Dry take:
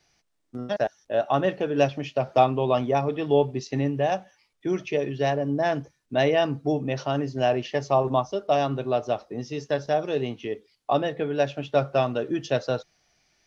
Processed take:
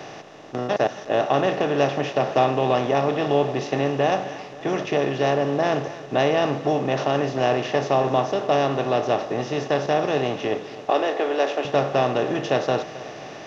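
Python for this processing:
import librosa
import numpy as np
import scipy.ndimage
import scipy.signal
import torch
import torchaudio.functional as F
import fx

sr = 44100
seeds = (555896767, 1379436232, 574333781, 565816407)

p1 = fx.bin_compress(x, sr, power=0.4)
p2 = fx.highpass(p1, sr, hz=300.0, slope=24, at=(10.9, 11.65))
p3 = p2 + fx.echo_feedback(p2, sr, ms=267, feedback_pct=57, wet_db=-17.0, dry=0)
y = p3 * 10.0 ** (-3.0 / 20.0)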